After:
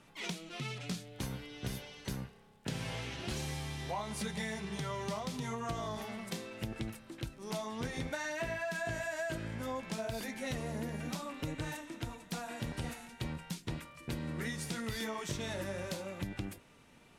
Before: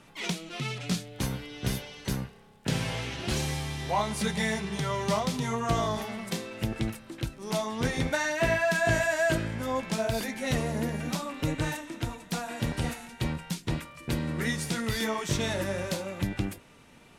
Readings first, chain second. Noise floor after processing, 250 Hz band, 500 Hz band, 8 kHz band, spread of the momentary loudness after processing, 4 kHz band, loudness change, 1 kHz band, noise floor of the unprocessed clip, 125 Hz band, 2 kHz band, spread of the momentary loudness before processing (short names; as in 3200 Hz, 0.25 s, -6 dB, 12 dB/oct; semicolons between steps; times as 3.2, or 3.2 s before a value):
-61 dBFS, -8.5 dB, -9.5 dB, -8.5 dB, 6 LU, -8.5 dB, -9.0 dB, -9.5 dB, -55 dBFS, -9.0 dB, -10.0 dB, 9 LU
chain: compressor, threshold -28 dBFS, peak gain reduction 8 dB; gain -6 dB